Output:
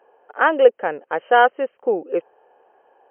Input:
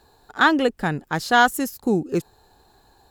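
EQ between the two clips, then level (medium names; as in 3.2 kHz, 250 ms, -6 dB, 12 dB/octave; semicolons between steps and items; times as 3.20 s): resonant high-pass 520 Hz, resonance Q 4.9; brick-wall FIR low-pass 3.2 kHz; -2.0 dB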